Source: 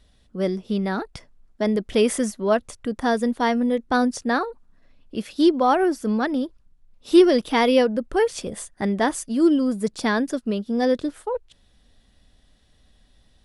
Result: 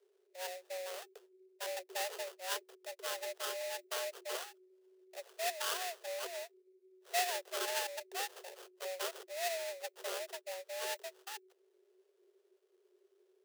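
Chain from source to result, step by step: sample-rate reducer 1.9 kHz, jitter 20%; frequency shift +360 Hz; amplifier tone stack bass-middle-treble 10-0-1; trim +8.5 dB

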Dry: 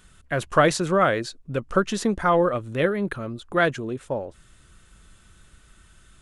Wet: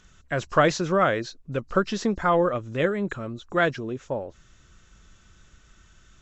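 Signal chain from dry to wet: knee-point frequency compression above 3.8 kHz 1.5:1; trim -1.5 dB

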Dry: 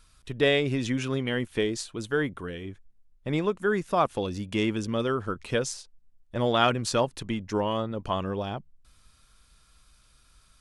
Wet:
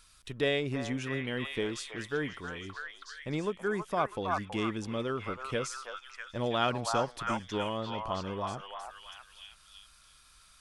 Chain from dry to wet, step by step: repeats whose band climbs or falls 325 ms, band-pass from 990 Hz, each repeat 0.7 oct, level 0 dB; tape noise reduction on one side only encoder only; trim -6.5 dB

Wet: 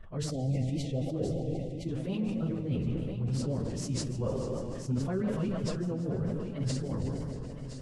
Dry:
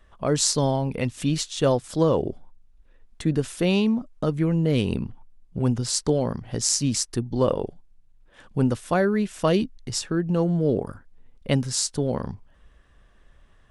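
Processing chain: backward echo that repeats 130 ms, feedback 82%, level -11.5 dB; spectral selection erased 0.55–3.33 s, 800–1900 Hz; tone controls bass +5 dB, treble -12 dB; harmonic-percussive split percussive -3 dB; bass shelf 230 Hz +5 dB; reverse; compression 4:1, threshold -28 dBFS, peak gain reduction 15 dB; reverse; wow and flutter 72 cents; plain phase-vocoder stretch 0.57×; on a send: thinning echo 1018 ms, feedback 38%, high-pass 160 Hz, level -10 dB; on the sum: decay stretcher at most 33 dB/s

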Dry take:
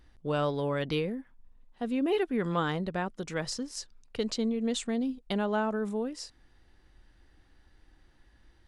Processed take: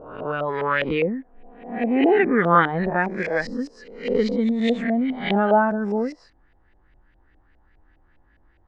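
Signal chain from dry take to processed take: reverse spectral sustain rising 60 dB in 1.00 s; spectral noise reduction 10 dB; LFO low-pass saw up 4.9 Hz 600–2600 Hz; trim +8 dB

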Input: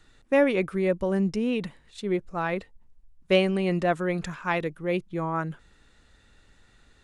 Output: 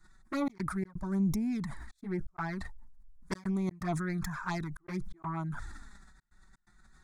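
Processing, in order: self-modulated delay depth 0.2 ms; trance gate "xxxx.xx.xxxx" 126 bpm -60 dB; static phaser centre 1.2 kHz, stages 4; touch-sensitive flanger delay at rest 6 ms, full sweep at -26 dBFS; decay stretcher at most 35 dB/s; trim -1.5 dB

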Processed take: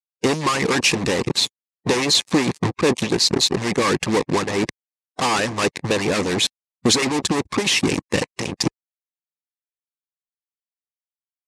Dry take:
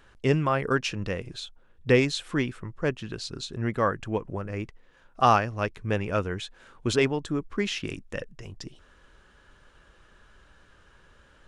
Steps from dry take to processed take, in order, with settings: fuzz box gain 45 dB, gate -39 dBFS; harmonic-percussive split harmonic -15 dB; cabinet simulation 130–9400 Hz, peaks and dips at 640 Hz -7 dB, 1.4 kHz -10 dB, 3.1 kHz -5 dB; trim +3 dB

